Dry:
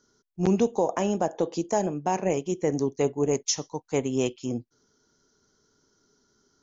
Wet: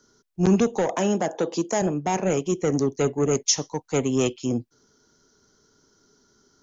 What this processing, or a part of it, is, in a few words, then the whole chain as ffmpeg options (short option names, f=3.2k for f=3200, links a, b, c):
one-band saturation: -filter_complex "[0:a]acrossover=split=250|2500[a][b][c];[b]asoftclip=type=tanh:threshold=-25dB[d];[a][d][c]amix=inputs=3:normalize=0,asettb=1/sr,asplit=3[e][f][g];[e]atrim=end=0.954[h];[f]atrim=start=0.95:end=1.82,asetpts=PTS-STARTPTS,afade=t=in:d=0.004:c=qsin,afade=t=out:st=0.866:d=0.004:c=qsin,highpass=160[i];[g]atrim=start=1.816[j];[h][i]acrossfade=d=0.004:c1=hsin:c2=qsin[k];[k][j]acrossfade=d=0.004:c1=qsin:c2=hsin,volume=5.5dB"